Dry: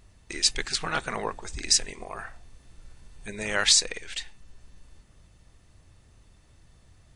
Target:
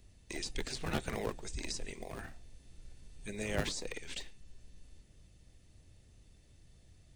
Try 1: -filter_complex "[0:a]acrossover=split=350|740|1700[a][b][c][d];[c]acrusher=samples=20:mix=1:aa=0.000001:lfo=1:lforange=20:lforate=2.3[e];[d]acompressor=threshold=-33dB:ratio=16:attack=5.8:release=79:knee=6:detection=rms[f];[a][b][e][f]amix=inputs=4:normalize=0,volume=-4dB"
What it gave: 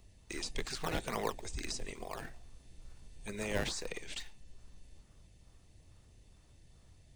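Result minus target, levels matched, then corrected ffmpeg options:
decimation with a swept rate: distortion -25 dB
-filter_complex "[0:a]acrossover=split=350|740|1700[a][b][c][d];[c]acrusher=samples=57:mix=1:aa=0.000001:lfo=1:lforange=57:lforate=2.3[e];[d]acompressor=threshold=-33dB:ratio=16:attack=5.8:release=79:knee=6:detection=rms[f];[a][b][e][f]amix=inputs=4:normalize=0,volume=-4dB"

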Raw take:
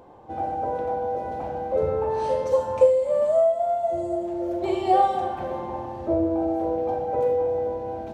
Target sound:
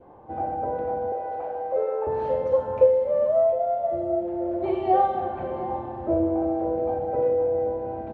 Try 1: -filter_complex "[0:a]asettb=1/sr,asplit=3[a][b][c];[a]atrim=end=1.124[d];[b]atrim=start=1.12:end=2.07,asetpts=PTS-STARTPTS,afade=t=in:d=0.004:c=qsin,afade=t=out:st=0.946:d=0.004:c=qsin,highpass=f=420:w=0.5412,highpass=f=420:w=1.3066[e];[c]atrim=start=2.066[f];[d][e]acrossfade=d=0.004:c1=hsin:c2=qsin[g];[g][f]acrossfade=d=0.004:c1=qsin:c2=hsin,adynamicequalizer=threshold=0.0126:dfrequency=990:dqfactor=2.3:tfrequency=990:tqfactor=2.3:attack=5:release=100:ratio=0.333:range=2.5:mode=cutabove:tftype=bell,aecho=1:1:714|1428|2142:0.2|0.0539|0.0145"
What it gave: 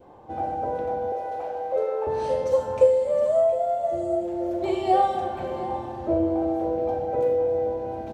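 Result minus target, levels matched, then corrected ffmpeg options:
2000 Hz band +2.5 dB
-filter_complex "[0:a]asettb=1/sr,asplit=3[a][b][c];[a]atrim=end=1.124[d];[b]atrim=start=1.12:end=2.07,asetpts=PTS-STARTPTS,afade=t=in:d=0.004:c=qsin,afade=t=out:st=0.946:d=0.004:c=qsin,highpass=f=420:w=0.5412,highpass=f=420:w=1.3066[e];[c]atrim=start=2.066[f];[d][e]acrossfade=d=0.004:c1=hsin:c2=qsin[g];[g][f]acrossfade=d=0.004:c1=qsin:c2=hsin,adynamicequalizer=threshold=0.0126:dfrequency=990:dqfactor=2.3:tfrequency=990:tqfactor=2.3:attack=5:release=100:ratio=0.333:range=2.5:mode=cutabove:tftype=bell,lowpass=1.9k,aecho=1:1:714|1428|2142:0.2|0.0539|0.0145"

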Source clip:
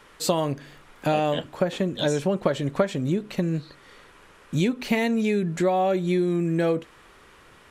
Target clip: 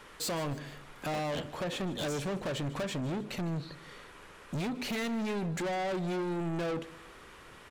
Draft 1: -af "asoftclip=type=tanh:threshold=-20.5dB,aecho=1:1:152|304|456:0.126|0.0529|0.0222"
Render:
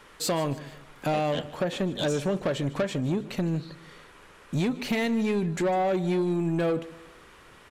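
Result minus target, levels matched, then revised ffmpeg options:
soft clip: distortion -8 dB
-af "asoftclip=type=tanh:threshold=-31.5dB,aecho=1:1:152|304|456:0.126|0.0529|0.0222"

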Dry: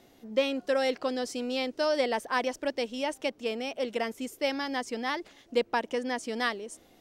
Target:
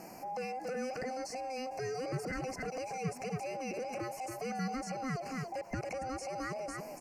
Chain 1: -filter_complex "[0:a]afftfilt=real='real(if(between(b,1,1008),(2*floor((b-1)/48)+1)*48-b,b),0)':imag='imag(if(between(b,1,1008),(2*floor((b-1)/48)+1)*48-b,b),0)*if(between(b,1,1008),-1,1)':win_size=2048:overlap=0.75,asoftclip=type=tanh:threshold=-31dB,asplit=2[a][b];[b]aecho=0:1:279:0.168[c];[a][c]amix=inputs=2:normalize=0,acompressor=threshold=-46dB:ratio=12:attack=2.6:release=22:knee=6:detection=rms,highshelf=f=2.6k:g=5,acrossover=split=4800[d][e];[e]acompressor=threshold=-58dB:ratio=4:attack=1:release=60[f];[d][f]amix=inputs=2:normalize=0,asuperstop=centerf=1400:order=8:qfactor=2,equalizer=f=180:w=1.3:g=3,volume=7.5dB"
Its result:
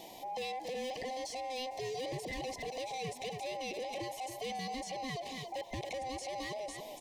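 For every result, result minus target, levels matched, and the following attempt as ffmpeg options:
4000 Hz band +8.5 dB; soft clip: distortion +7 dB; 250 Hz band -4.5 dB
-filter_complex "[0:a]afftfilt=real='real(if(between(b,1,1008),(2*floor((b-1)/48)+1)*48-b,b),0)':imag='imag(if(between(b,1,1008),(2*floor((b-1)/48)+1)*48-b,b),0)*if(between(b,1,1008),-1,1)':win_size=2048:overlap=0.75,asoftclip=type=tanh:threshold=-31dB,asplit=2[a][b];[b]aecho=0:1:279:0.168[c];[a][c]amix=inputs=2:normalize=0,acompressor=threshold=-46dB:ratio=12:attack=2.6:release=22:knee=6:detection=rms,highshelf=f=2.6k:g=5,acrossover=split=4800[d][e];[e]acompressor=threshold=-58dB:ratio=4:attack=1:release=60[f];[d][f]amix=inputs=2:normalize=0,asuperstop=centerf=3500:order=8:qfactor=2,equalizer=f=180:w=1.3:g=3,volume=7.5dB"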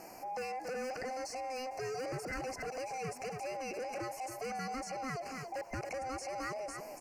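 soft clip: distortion +7 dB; 250 Hz band -4.5 dB
-filter_complex "[0:a]afftfilt=real='real(if(between(b,1,1008),(2*floor((b-1)/48)+1)*48-b,b),0)':imag='imag(if(between(b,1,1008),(2*floor((b-1)/48)+1)*48-b,b),0)*if(between(b,1,1008),-1,1)':win_size=2048:overlap=0.75,asoftclip=type=tanh:threshold=-23dB,asplit=2[a][b];[b]aecho=0:1:279:0.168[c];[a][c]amix=inputs=2:normalize=0,acompressor=threshold=-46dB:ratio=12:attack=2.6:release=22:knee=6:detection=rms,highshelf=f=2.6k:g=5,acrossover=split=4800[d][e];[e]acompressor=threshold=-58dB:ratio=4:attack=1:release=60[f];[d][f]amix=inputs=2:normalize=0,asuperstop=centerf=3500:order=8:qfactor=2,equalizer=f=180:w=1.3:g=3,volume=7.5dB"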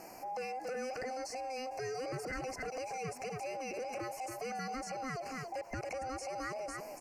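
250 Hz band -4.0 dB
-filter_complex "[0:a]afftfilt=real='real(if(between(b,1,1008),(2*floor((b-1)/48)+1)*48-b,b),0)':imag='imag(if(between(b,1,1008),(2*floor((b-1)/48)+1)*48-b,b),0)*if(between(b,1,1008),-1,1)':win_size=2048:overlap=0.75,asoftclip=type=tanh:threshold=-23dB,asplit=2[a][b];[b]aecho=0:1:279:0.168[c];[a][c]amix=inputs=2:normalize=0,acompressor=threshold=-46dB:ratio=12:attack=2.6:release=22:knee=6:detection=rms,highshelf=f=2.6k:g=5,acrossover=split=4800[d][e];[e]acompressor=threshold=-58dB:ratio=4:attack=1:release=60[f];[d][f]amix=inputs=2:normalize=0,asuperstop=centerf=3500:order=8:qfactor=2,equalizer=f=180:w=1.3:g=12.5,volume=7.5dB"

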